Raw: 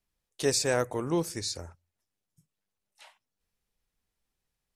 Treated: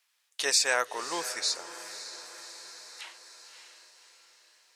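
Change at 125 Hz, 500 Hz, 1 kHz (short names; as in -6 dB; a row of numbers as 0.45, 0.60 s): under -25 dB, -6.0 dB, +3.5 dB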